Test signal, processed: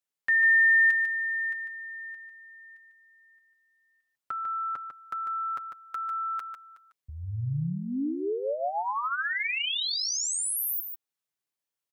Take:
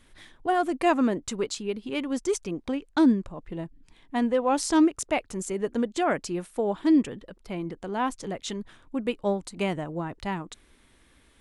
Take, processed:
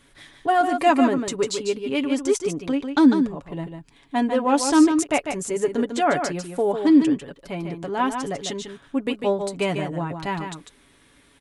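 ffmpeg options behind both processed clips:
-filter_complex "[0:a]highpass=f=75:p=1,aecho=1:1:7.1:0.51,asplit=2[a][b];[b]aecho=0:1:148:0.447[c];[a][c]amix=inputs=2:normalize=0,volume=3.5dB"

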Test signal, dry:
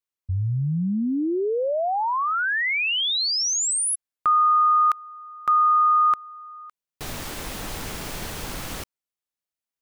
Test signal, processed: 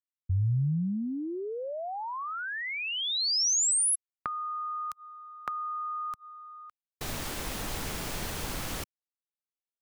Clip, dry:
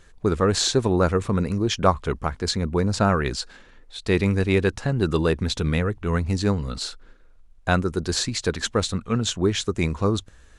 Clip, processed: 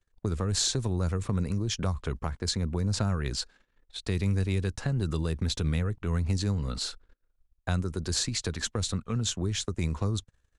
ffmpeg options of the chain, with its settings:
-filter_complex "[0:a]acrossover=split=160|4600[a][b][c];[b]acompressor=threshold=-33dB:ratio=8:attack=15:release=149:knee=2.83:detection=peak[d];[a][d][c]amix=inputs=3:normalize=0,agate=range=-33dB:threshold=-39dB:ratio=3:release=38:detection=peak,volume=-2dB"

